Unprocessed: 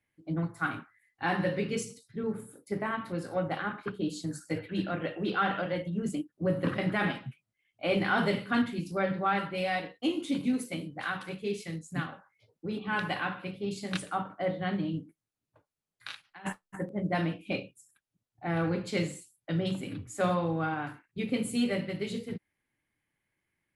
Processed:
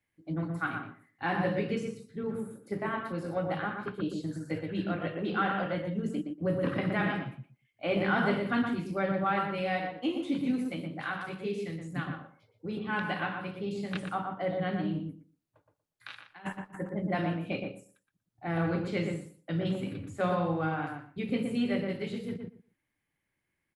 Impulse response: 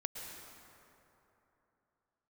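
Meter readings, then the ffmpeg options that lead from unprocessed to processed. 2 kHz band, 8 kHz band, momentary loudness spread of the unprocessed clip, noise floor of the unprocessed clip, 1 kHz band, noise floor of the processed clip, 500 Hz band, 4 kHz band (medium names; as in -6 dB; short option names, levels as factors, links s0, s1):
-1.0 dB, under -10 dB, 10 LU, under -85 dBFS, 0.0 dB, -83 dBFS, 0.0 dB, -3.5 dB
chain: -filter_complex "[0:a]acrossover=split=3600[s0][s1];[s1]acompressor=threshold=0.00178:ratio=4:attack=1:release=60[s2];[s0][s2]amix=inputs=2:normalize=0,asplit=2[s3][s4];[s4]adelay=119,lowpass=f=1500:p=1,volume=0.708,asplit=2[s5][s6];[s6]adelay=119,lowpass=f=1500:p=1,volume=0.18,asplit=2[s7][s8];[s8]adelay=119,lowpass=f=1500:p=1,volume=0.18[s9];[s3][s5][s7][s9]amix=inputs=4:normalize=0,volume=0.841"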